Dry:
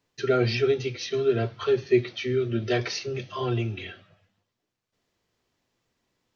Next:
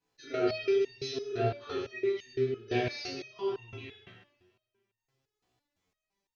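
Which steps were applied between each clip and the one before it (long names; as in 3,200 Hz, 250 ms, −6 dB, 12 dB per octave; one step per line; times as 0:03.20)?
coupled-rooms reverb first 0.82 s, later 3.2 s, from −28 dB, DRR −7.5 dB
step-sequenced resonator 5.9 Hz 62–920 Hz
level −3.5 dB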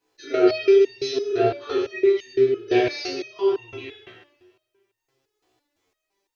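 low shelf with overshoot 260 Hz −6.5 dB, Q 3
level +8 dB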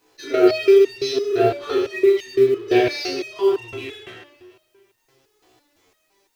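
mu-law and A-law mismatch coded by mu
level +2.5 dB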